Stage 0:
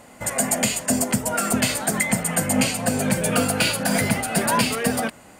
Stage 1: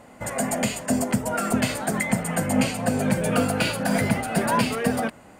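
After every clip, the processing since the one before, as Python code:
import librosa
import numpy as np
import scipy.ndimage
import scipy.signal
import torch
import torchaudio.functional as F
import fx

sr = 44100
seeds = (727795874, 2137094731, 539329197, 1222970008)

y = fx.high_shelf(x, sr, hz=2700.0, db=-9.0)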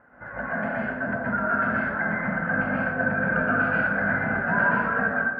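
y = fx.ladder_lowpass(x, sr, hz=1600.0, resonance_pct=85)
y = fx.rev_plate(y, sr, seeds[0], rt60_s=1.1, hf_ratio=0.55, predelay_ms=110, drr_db=-6.5)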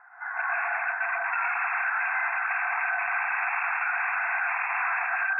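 y = 10.0 ** (-25.5 / 20.0) * (np.abs((x / 10.0 ** (-25.5 / 20.0) + 3.0) % 4.0 - 2.0) - 1.0)
y = fx.brickwall_bandpass(y, sr, low_hz=680.0, high_hz=2700.0)
y = y * 10.0 ** (5.5 / 20.0)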